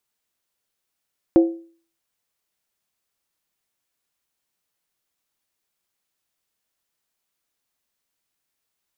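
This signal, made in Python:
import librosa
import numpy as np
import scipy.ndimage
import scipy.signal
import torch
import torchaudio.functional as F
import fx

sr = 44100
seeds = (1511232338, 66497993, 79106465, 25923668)

y = fx.strike_skin(sr, length_s=0.63, level_db=-7.0, hz=333.0, decay_s=0.44, tilt_db=10.0, modes=5)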